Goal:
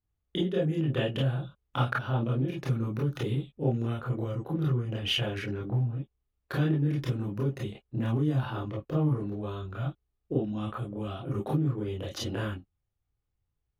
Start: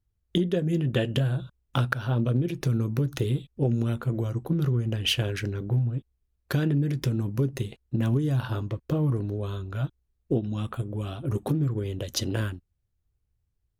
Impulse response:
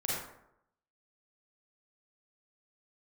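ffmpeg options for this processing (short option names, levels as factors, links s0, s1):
-filter_complex "[0:a]bass=f=250:g=-6,treble=f=4000:g=-10[s0];[1:a]atrim=start_sample=2205,atrim=end_sample=3969,asetrate=70560,aresample=44100[s1];[s0][s1]afir=irnorm=-1:irlink=0"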